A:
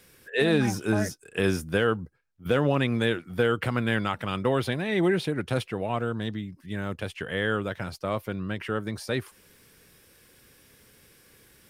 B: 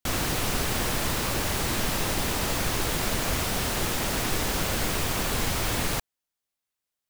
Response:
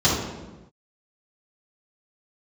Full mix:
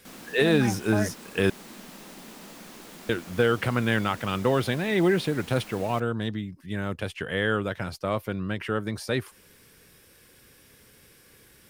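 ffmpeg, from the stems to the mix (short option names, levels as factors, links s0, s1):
-filter_complex "[0:a]volume=1.19,asplit=3[s0][s1][s2];[s0]atrim=end=1.5,asetpts=PTS-STARTPTS,afade=t=out:st=1.496:d=0.004:c=hsin[s3];[s1]atrim=start=1.5:end=3.09,asetpts=PTS-STARTPTS,volume=0[s4];[s2]atrim=start=3.09,asetpts=PTS-STARTPTS,afade=t=in:d=0.004:c=hsin[s5];[s3][s4][s5]concat=n=3:v=0:a=1[s6];[1:a]lowshelf=f=140:t=q:w=3:g=-12.5,volume=0.126[s7];[s6][s7]amix=inputs=2:normalize=0"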